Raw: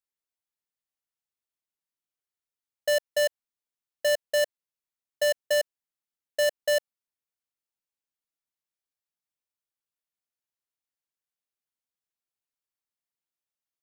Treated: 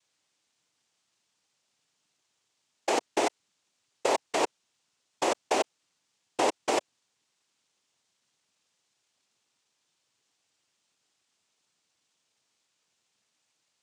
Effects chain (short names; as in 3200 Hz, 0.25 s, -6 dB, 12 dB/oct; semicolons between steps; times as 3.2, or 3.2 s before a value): negative-ratio compressor -33 dBFS, ratio -1; noise vocoder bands 4; gain +8.5 dB